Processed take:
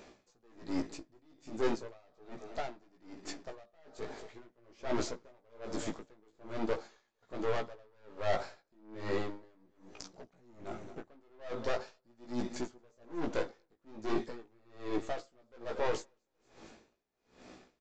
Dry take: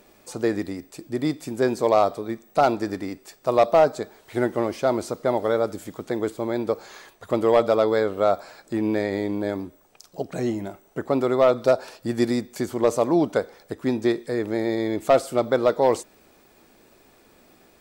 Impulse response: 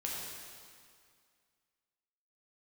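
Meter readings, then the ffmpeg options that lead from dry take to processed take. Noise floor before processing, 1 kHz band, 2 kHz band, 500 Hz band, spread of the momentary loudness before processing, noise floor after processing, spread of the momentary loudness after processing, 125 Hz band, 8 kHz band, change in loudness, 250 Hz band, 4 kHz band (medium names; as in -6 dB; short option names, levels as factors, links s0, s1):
-57 dBFS, -17.5 dB, -12.0 dB, -18.0 dB, 13 LU, -79 dBFS, 22 LU, -15.5 dB, -10.5 dB, -16.0 dB, -16.0 dB, -11.0 dB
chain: -filter_complex "[0:a]areverse,acompressor=threshold=0.0398:ratio=4,areverse,aeval=exprs='(tanh(50.1*val(0)+0.65)-tanh(0.65))/50.1':c=same,asplit=2[s0][s1];[s1]aeval=exprs='val(0)*gte(abs(val(0)),0.00335)':c=same,volume=0.316[s2];[s0][s2]amix=inputs=2:normalize=0,flanger=delay=16:depth=2.7:speed=0.4,aecho=1:1:228|456|684:0.141|0.0579|0.0237,aresample=16000,aresample=44100,aeval=exprs='val(0)*pow(10,-35*(0.5-0.5*cos(2*PI*1.2*n/s))/20)':c=same,volume=2.51"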